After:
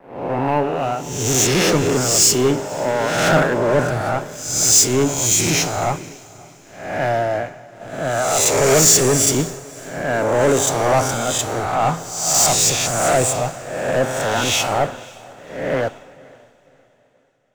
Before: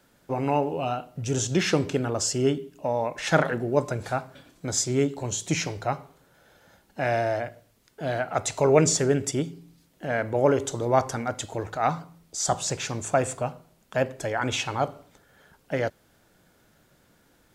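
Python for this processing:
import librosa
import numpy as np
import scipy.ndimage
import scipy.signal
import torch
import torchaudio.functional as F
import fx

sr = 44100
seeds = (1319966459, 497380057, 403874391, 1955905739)

p1 = fx.spec_swells(x, sr, rise_s=1.27)
p2 = fx.high_shelf(p1, sr, hz=5400.0, db=6.0)
p3 = fx.leveller(p2, sr, passes=5)
p4 = p3 + fx.echo_diffused(p3, sr, ms=549, feedback_pct=61, wet_db=-12.0, dry=0)
p5 = fx.band_widen(p4, sr, depth_pct=100)
y = p5 * librosa.db_to_amplitude(-11.0)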